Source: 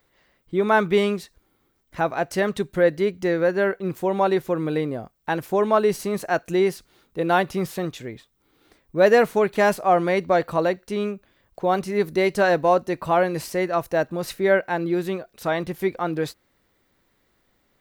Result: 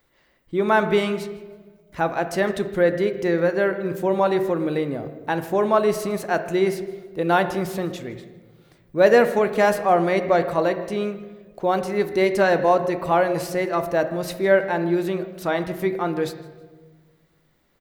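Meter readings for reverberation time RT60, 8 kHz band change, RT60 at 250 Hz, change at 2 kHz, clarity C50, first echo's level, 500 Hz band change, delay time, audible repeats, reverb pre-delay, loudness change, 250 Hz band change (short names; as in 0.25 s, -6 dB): 1.5 s, 0.0 dB, 1.7 s, +0.5 dB, 11.0 dB, -21.0 dB, +1.0 dB, 0.159 s, 2, 3 ms, +1.0 dB, +1.0 dB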